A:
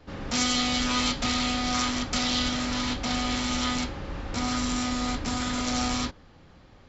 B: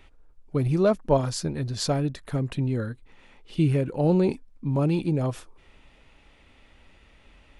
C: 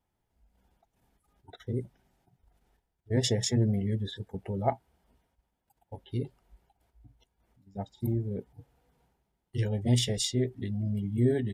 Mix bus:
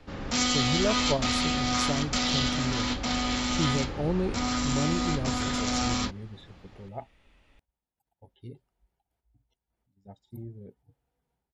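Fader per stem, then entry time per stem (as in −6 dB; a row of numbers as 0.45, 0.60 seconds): −0.5, −7.0, −11.5 decibels; 0.00, 0.00, 2.30 seconds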